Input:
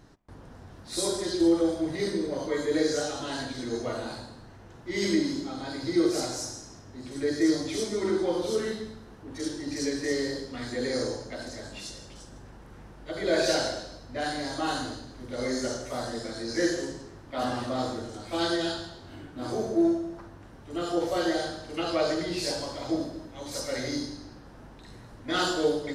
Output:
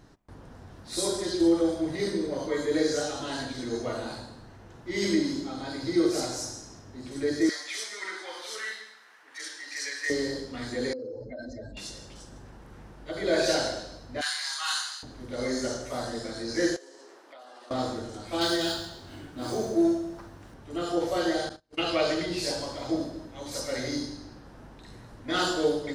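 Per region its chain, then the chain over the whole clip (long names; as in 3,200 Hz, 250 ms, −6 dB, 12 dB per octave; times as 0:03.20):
0:07.49–0:10.10: high-pass filter 1,200 Hz + parametric band 1,900 Hz +9 dB 0.76 octaves
0:10.93–0:11.77: expanding power law on the bin magnitudes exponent 2.3 + downward compressor 5 to 1, threshold −34 dBFS
0:14.21–0:15.03: Butterworth high-pass 1,000 Hz + high-shelf EQ 2,200 Hz +9 dB
0:16.76–0:17.71: high-pass filter 380 Hz 24 dB per octave + downward compressor 12 to 1, threshold −45 dBFS
0:18.41–0:20.54: running median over 3 samples + high-shelf EQ 4,000 Hz +8 dB
0:21.49–0:22.26: noise gate −37 dBFS, range −34 dB + dynamic equaliser 2,700 Hz, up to +8 dB, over −52 dBFS, Q 1.7
whole clip: no processing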